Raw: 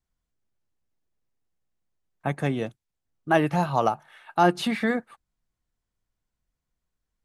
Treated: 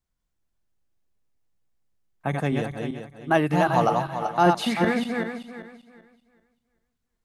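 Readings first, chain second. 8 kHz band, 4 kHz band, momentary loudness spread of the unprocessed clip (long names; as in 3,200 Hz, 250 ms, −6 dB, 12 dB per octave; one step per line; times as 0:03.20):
+2.0 dB, +2.0 dB, 12 LU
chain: feedback delay that plays each chunk backwards 194 ms, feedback 50%, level −3 dB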